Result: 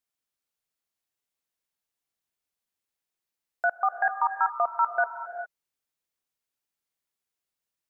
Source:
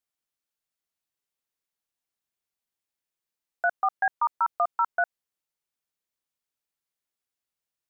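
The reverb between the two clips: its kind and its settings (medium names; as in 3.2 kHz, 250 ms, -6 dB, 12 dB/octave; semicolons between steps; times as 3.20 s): gated-style reverb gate 430 ms rising, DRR 7.5 dB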